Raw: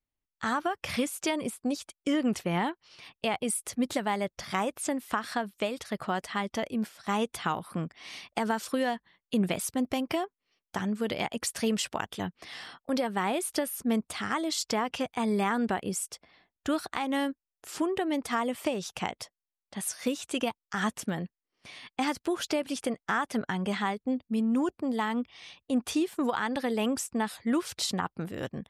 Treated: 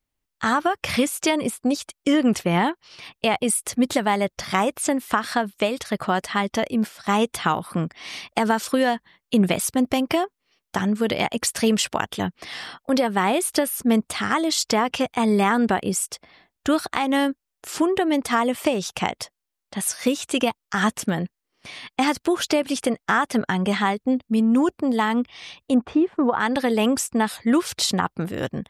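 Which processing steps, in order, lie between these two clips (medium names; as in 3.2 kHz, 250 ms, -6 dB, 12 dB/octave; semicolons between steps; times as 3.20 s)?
25.74–26.40 s: low-pass 1.4 kHz 12 dB/octave; trim +8.5 dB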